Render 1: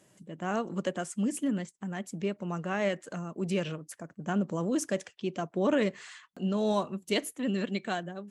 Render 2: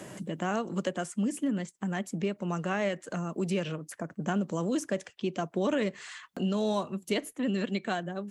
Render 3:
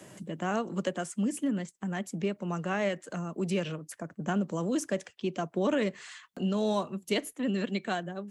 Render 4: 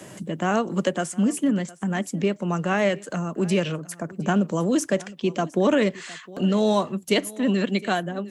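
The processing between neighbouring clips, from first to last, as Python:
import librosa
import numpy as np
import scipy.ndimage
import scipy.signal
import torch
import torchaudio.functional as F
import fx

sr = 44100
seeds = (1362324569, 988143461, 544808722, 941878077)

y1 = fx.band_squash(x, sr, depth_pct=70)
y2 = fx.band_widen(y1, sr, depth_pct=40)
y3 = y2 + 10.0 ** (-20.5 / 20.0) * np.pad(y2, (int(711 * sr / 1000.0), 0))[:len(y2)]
y3 = y3 * librosa.db_to_amplitude(8.0)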